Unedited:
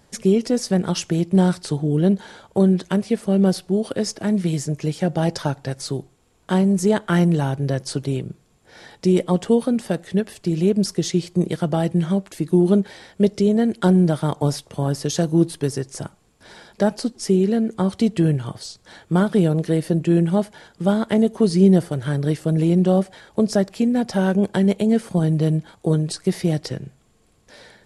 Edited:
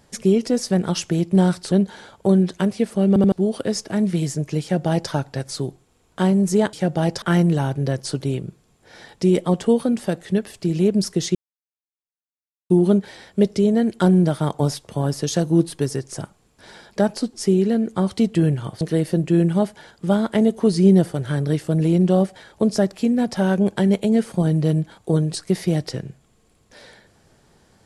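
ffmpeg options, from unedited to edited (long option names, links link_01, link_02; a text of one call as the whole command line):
ffmpeg -i in.wav -filter_complex "[0:a]asplit=10[link_01][link_02][link_03][link_04][link_05][link_06][link_07][link_08][link_09][link_10];[link_01]atrim=end=1.722[link_11];[link_02]atrim=start=2.028:end=3.472[link_12];[link_03]atrim=start=3.388:end=3.472[link_13];[link_04]atrim=start=3.388:end=3.472[link_14];[link_05]atrim=start=3.628:end=7.042[link_15];[link_06]atrim=start=4.928:end=5.422[link_16];[link_07]atrim=start=7.038:end=11.17,asetpts=PTS-STARTPTS,afade=type=out:start_time=4.128:duration=0.004:curve=hsin[link_17];[link_08]atrim=start=11.17:end=12.52,asetpts=PTS-STARTPTS,volume=0[link_18];[link_09]atrim=start=12.52:end=18.632,asetpts=PTS-STARTPTS,afade=type=in:duration=0.004:curve=hsin[link_19];[link_10]atrim=start=19.578[link_20];[link_11][link_12]acrossfade=duration=0.004:curve1=hsin:curve2=hsin[link_21];[link_21][link_13]acrossfade=duration=0.004:curve1=hsin:curve2=hsin[link_22];[link_22][link_14]acrossfade=duration=0.004:curve1=hsin:curve2=hsin[link_23];[link_23][link_15]acrossfade=duration=0.004:curve1=hsin:curve2=hsin[link_24];[link_24][link_16]acrossfade=duration=0.004:curve1=hsin:curve2=hsin[link_25];[link_17][link_18][link_19]concat=n=3:v=0:a=1[link_26];[link_25][link_26]acrossfade=duration=0.004:curve1=hsin:curve2=hsin[link_27];[link_27][link_20]acrossfade=duration=0.004:curve1=hsin:curve2=hsin" out.wav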